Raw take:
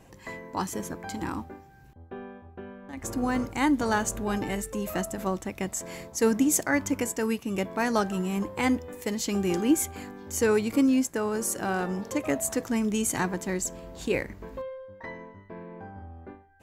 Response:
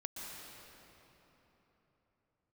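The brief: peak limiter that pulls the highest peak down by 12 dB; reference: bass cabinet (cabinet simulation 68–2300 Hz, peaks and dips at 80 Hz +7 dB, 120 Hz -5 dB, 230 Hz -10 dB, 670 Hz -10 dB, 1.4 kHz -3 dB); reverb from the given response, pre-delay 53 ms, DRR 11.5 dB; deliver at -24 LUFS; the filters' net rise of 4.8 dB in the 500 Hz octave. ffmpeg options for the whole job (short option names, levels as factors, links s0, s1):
-filter_complex "[0:a]equalizer=f=500:t=o:g=8,alimiter=limit=0.106:level=0:latency=1,asplit=2[s0][s1];[1:a]atrim=start_sample=2205,adelay=53[s2];[s1][s2]afir=irnorm=-1:irlink=0,volume=0.282[s3];[s0][s3]amix=inputs=2:normalize=0,highpass=f=68:w=0.5412,highpass=f=68:w=1.3066,equalizer=f=80:t=q:w=4:g=7,equalizer=f=120:t=q:w=4:g=-5,equalizer=f=230:t=q:w=4:g=-10,equalizer=f=670:t=q:w=4:g=-10,equalizer=f=1400:t=q:w=4:g=-3,lowpass=f=2300:w=0.5412,lowpass=f=2300:w=1.3066,volume=2.99"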